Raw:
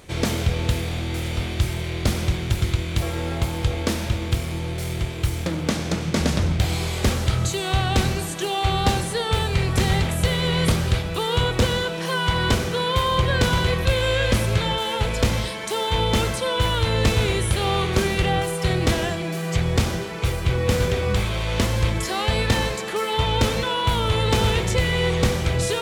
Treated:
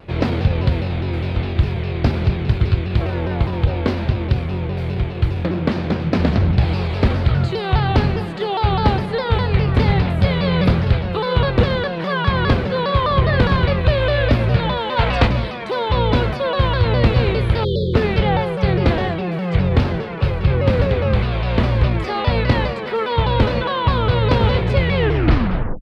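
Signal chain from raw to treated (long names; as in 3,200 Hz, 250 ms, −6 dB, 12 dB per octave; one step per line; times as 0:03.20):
turntable brake at the end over 0.85 s
gain on a spectral selection 0:14.98–0:15.29, 640–8,400 Hz +7 dB
dynamic equaliser 4,300 Hz, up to +6 dB, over −46 dBFS, Q 3.4
time-frequency box erased 0:17.65–0:17.96, 580–3,000 Hz
pitch shifter +1 semitone
high-frequency loss of the air 410 metres
pitch modulation by a square or saw wave saw down 4.9 Hz, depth 160 cents
level +5.5 dB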